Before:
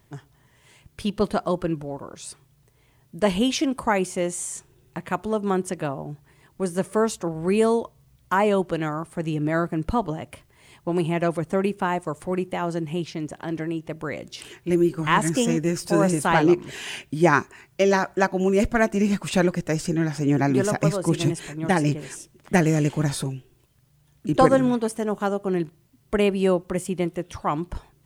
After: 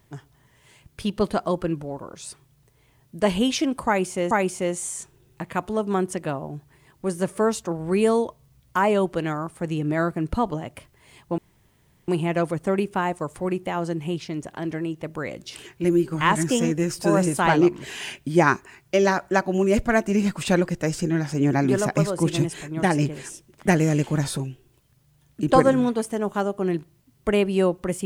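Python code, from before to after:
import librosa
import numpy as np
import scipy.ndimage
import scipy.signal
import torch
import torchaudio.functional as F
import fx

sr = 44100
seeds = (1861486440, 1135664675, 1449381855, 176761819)

y = fx.edit(x, sr, fx.repeat(start_s=3.87, length_s=0.44, count=2),
    fx.insert_room_tone(at_s=10.94, length_s=0.7), tone=tone)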